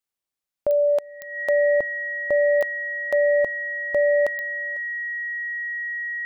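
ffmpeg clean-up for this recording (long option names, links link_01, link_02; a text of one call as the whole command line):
ffmpeg -i in.wav -af "adeclick=threshold=4,bandreject=frequency=1900:width=30" out.wav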